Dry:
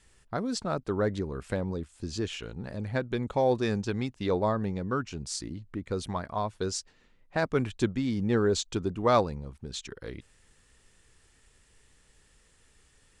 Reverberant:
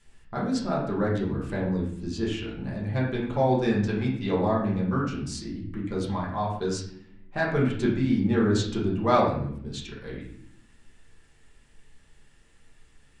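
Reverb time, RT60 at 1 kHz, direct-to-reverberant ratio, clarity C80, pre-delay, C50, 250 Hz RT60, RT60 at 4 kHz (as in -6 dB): 0.70 s, 0.60 s, -6.0 dB, 7.5 dB, 5 ms, 4.0 dB, 1.3 s, 0.50 s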